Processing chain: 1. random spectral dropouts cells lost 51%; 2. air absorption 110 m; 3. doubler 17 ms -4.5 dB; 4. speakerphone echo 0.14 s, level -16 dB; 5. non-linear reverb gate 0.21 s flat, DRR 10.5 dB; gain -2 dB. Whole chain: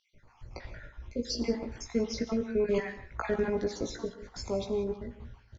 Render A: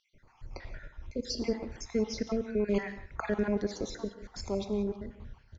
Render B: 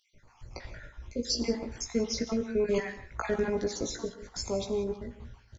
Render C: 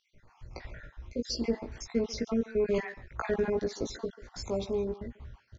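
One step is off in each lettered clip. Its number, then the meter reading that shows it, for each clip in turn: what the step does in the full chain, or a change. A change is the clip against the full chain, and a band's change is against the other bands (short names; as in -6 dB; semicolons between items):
3, 125 Hz band +2.0 dB; 2, 4 kHz band +4.5 dB; 5, echo-to-direct -9.5 dB to -18.0 dB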